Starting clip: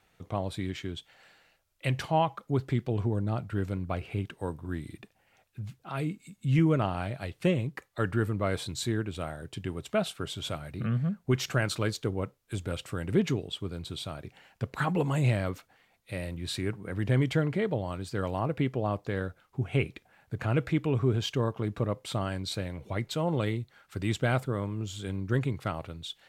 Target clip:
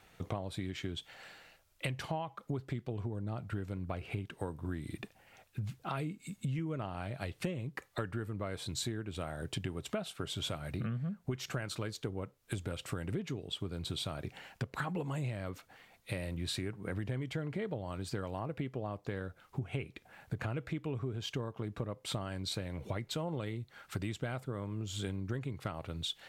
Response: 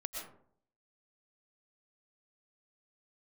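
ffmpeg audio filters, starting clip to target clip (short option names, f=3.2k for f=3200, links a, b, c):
-af "acompressor=threshold=-39dB:ratio=16,volume=5.5dB"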